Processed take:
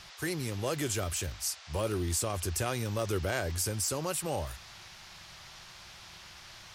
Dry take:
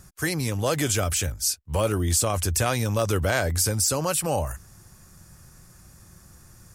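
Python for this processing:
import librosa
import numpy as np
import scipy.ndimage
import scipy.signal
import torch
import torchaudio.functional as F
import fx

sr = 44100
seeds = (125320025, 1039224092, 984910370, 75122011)

y = fx.small_body(x, sr, hz=(370.0, 2800.0), ring_ms=45, db=7)
y = fx.dmg_noise_band(y, sr, seeds[0], low_hz=610.0, high_hz=5700.0, level_db=-42.0)
y = y * 10.0 ** (-9.0 / 20.0)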